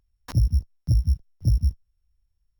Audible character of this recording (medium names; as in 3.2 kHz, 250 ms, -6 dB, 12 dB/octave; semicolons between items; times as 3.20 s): a buzz of ramps at a fixed pitch in blocks of 8 samples